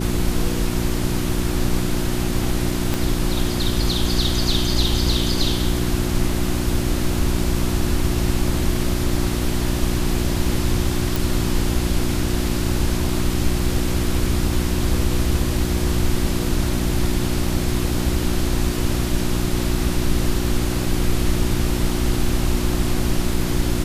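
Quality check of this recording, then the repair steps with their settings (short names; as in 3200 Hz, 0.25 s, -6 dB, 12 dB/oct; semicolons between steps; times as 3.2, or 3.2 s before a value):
hum 60 Hz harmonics 6 -24 dBFS
2.94 pop
11.16 pop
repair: de-click; de-hum 60 Hz, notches 6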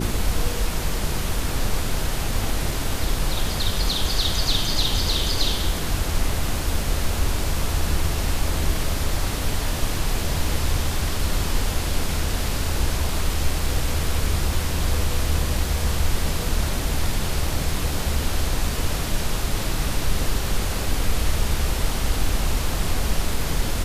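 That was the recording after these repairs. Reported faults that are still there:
2.94 pop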